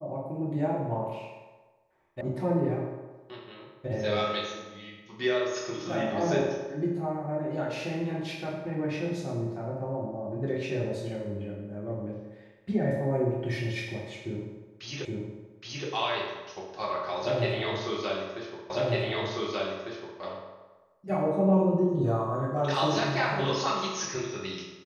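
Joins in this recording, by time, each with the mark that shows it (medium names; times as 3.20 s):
2.21 s: sound stops dead
15.05 s: repeat of the last 0.82 s
18.70 s: repeat of the last 1.5 s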